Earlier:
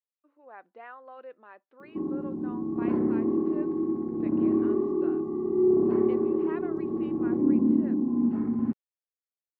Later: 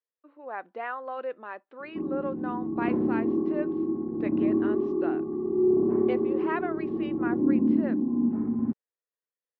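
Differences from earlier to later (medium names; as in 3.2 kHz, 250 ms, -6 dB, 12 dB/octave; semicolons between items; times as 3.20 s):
speech +11.0 dB; background: add low-pass 1.1 kHz 6 dB/octave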